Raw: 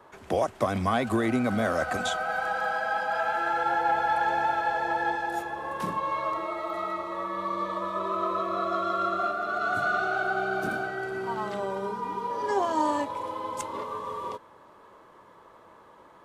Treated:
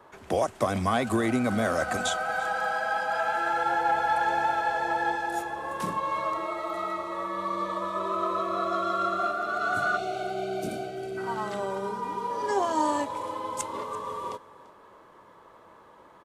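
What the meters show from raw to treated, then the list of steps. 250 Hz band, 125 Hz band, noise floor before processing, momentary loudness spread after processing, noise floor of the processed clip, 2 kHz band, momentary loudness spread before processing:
0.0 dB, 0.0 dB, −54 dBFS, 8 LU, −54 dBFS, −1.0 dB, 7 LU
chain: gain on a spectral selection 0:09.97–0:11.18, 760–2,000 Hz −16 dB
dynamic equaliser 8,400 Hz, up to +6 dB, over −56 dBFS, Q 0.86
on a send: single-tap delay 340 ms −20 dB

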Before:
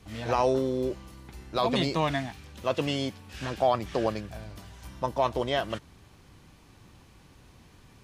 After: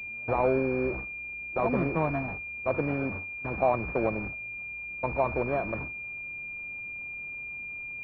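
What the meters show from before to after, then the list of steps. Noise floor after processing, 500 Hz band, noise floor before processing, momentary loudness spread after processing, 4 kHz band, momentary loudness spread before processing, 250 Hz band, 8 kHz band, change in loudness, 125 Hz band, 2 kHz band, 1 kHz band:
−39 dBFS, −0.5 dB, −56 dBFS, 9 LU, below −25 dB, 16 LU, 0.0 dB, below −25 dB, −1.5 dB, 0.0 dB, +7.0 dB, −2.0 dB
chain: linear delta modulator 32 kbit/s, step −29.5 dBFS
noise gate with hold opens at −22 dBFS
switching amplifier with a slow clock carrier 2,400 Hz

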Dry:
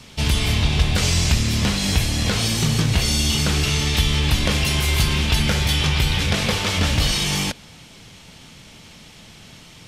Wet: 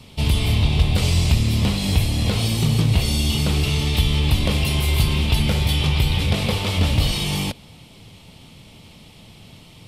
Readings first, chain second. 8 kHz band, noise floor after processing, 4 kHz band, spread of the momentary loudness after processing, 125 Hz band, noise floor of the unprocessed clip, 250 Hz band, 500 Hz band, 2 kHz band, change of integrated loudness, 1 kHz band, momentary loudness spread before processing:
−6.5 dB, −46 dBFS, −3.0 dB, 3 LU, +2.0 dB, −45 dBFS, +0.5 dB, −0.5 dB, −4.5 dB, −0.5 dB, −2.5 dB, 2 LU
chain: graphic EQ with 15 bands 100 Hz +4 dB, 1,600 Hz −11 dB, 6,300 Hz −10 dB

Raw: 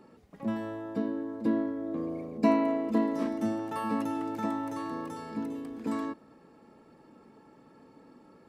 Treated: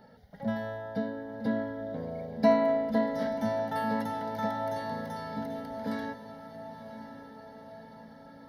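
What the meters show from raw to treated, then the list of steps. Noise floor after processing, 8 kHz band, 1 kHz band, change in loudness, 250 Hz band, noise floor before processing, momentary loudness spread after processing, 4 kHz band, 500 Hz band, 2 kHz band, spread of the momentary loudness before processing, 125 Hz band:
−51 dBFS, can't be measured, +2.5 dB, 0.0 dB, −3.0 dB, −58 dBFS, 21 LU, +4.0 dB, +4.5 dB, +4.5 dB, 10 LU, +3.0 dB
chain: phaser with its sweep stopped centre 1,700 Hz, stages 8
feedback delay with all-pass diffusion 1,025 ms, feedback 59%, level −12 dB
level +5.5 dB

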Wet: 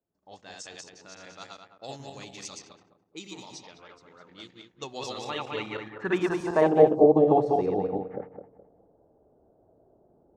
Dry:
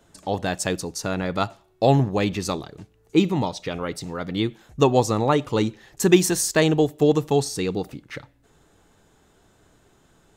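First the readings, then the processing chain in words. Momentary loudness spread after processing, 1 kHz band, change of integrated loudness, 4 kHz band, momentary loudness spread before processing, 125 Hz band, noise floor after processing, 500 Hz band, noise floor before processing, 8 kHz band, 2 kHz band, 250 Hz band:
24 LU, −4.0 dB, −1.5 dB, −11.0 dB, 11 LU, −13.5 dB, −66 dBFS, −2.5 dB, −60 dBFS, −17.0 dB, −7.5 dB, −7.5 dB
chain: feedback delay that plays each chunk backwards 105 ms, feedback 57%, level −1.5 dB
time-frequency box erased 0:06.96–0:07.17, 1,200–4,000 Hz
low-pass that shuts in the quiet parts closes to 540 Hz, open at −15.5 dBFS
spectral tilt −3 dB per octave
band-pass filter sweep 6,400 Hz → 660 Hz, 0:04.69–0:06.88
level +2.5 dB

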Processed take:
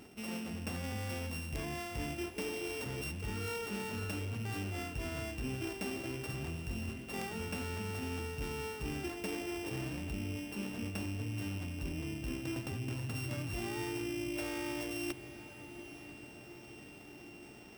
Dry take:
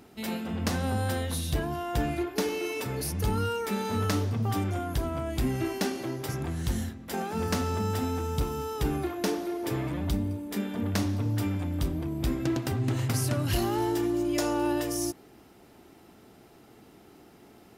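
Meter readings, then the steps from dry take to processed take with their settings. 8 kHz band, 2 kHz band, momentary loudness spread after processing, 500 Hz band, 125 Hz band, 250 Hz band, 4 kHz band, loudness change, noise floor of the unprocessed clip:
−9.0 dB, −3.5 dB, 11 LU, −10.0 dB, −10.5 dB, −10.0 dB, −6.5 dB, −9.5 dB, −55 dBFS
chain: samples sorted by size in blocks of 16 samples
reversed playback
downward compressor 4 to 1, threshold −37 dBFS, peak gain reduction 12.5 dB
reversed playback
wrap-around overflow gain 28 dB
feedback delay with all-pass diffusion 880 ms, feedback 63%, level −14 dB
level −1 dB

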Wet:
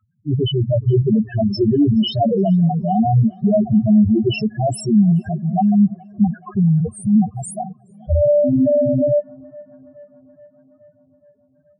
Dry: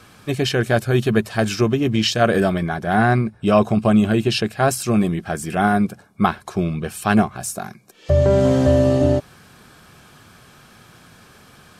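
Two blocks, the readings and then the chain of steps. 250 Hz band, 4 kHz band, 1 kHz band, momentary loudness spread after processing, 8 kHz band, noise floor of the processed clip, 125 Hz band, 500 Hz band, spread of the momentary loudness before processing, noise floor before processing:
+4.0 dB, −3.0 dB, −3.0 dB, 7 LU, −7.0 dB, −59 dBFS, +3.0 dB, 0.0 dB, 9 LU, −49 dBFS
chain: leveller curve on the samples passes 5
spectral peaks only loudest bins 2
tape delay 423 ms, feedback 70%, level −24 dB, low-pass 2,400 Hz
level −5 dB

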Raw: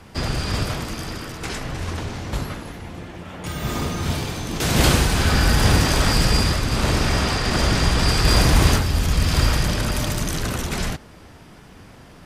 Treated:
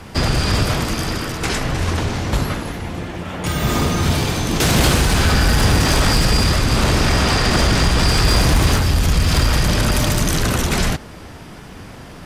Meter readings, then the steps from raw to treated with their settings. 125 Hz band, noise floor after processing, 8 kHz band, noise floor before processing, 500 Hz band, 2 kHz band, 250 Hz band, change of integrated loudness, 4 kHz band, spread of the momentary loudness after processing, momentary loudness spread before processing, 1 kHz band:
+3.5 dB, −37 dBFS, +4.0 dB, −45 dBFS, +4.0 dB, +4.0 dB, +4.5 dB, +3.5 dB, +4.0 dB, 13 LU, 14 LU, +4.0 dB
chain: in parallel at −4 dB: gain into a clipping stage and back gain 18.5 dB
on the sum: downward compressor 2.5 to 1, threshold −17 dBFS, peak gain reduction 6 dB
level +4 dB

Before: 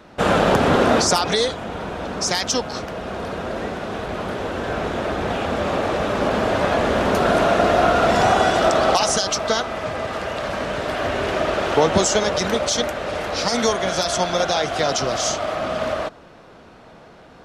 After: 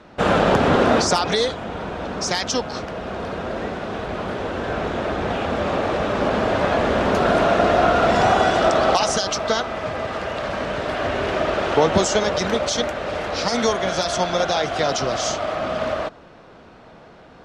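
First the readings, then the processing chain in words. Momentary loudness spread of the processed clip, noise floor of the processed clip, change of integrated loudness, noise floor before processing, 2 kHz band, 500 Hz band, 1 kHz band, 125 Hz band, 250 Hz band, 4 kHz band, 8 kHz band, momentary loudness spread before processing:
11 LU, −46 dBFS, −0.5 dB, −45 dBFS, −0.5 dB, 0.0 dB, 0.0 dB, 0.0 dB, 0.0 dB, −1.5 dB, −3.5 dB, 11 LU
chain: high-frequency loss of the air 52 metres

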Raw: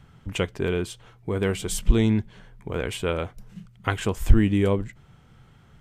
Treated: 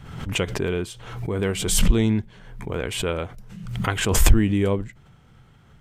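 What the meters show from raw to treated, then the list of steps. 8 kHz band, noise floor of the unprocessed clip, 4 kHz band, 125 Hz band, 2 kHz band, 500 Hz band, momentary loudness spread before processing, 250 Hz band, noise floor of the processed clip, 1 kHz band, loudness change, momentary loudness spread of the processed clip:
+9.5 dB, −54 dBFS, +6.5 dB, +1.5 dB, +3.0 dB, +0.5 dB, 15 LU, +1.0 dB, −53 dBFS, +2.0 dB, +2.0 dB, 16 LU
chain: background raised ahead of every attack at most 56 dB per second

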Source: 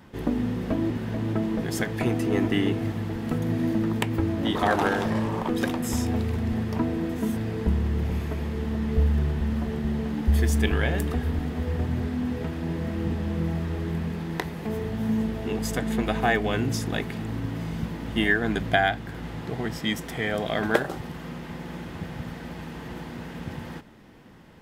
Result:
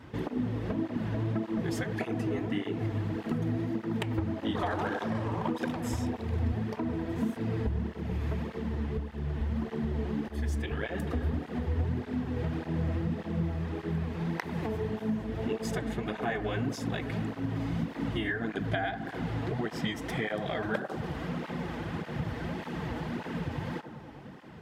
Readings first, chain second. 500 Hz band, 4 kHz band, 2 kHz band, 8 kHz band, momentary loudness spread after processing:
−5.5 dB, −8.0 dB, −8.0 dB, −10.5 dB, 4 LU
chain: high-shelf EQ 7,100 Hz −11.5 dB
downward compressor, threshold −31 dBFS, peak gain reduction 15.5 dB
bucket-brigade delay 98 ms, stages 1,024, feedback 80%, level −12 dB
through-zero flanger with one copy inverted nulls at 1.7 Hz, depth 5.9 ms
level +5 dB

